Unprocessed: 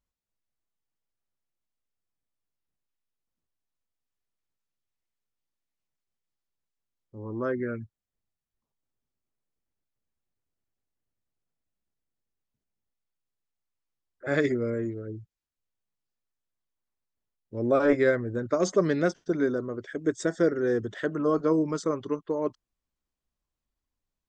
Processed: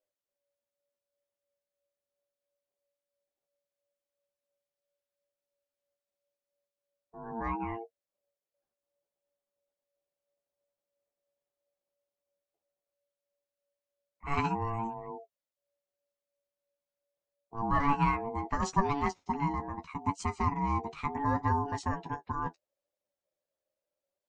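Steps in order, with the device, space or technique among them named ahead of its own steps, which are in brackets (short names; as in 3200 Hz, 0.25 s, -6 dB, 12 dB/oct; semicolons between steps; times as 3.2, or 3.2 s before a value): alien voice (ring modulator 570 Hz; flange 0.74 Hz, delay 9.6 ms, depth 3.7 ms, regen +26%); gain +1.5 dB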